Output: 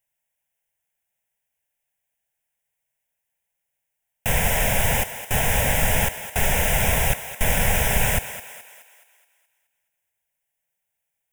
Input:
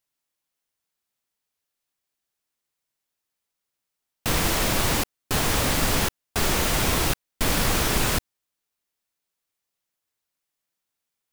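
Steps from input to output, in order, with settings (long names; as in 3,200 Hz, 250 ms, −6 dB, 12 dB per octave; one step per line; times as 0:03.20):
phaser with its sweep stopped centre 1,200 Hz, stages 6
feedback echo with a high-pass in the loop 212 ms, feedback 49%, high-pass 390 Hz, level −11.5 dB
level +4.5 dB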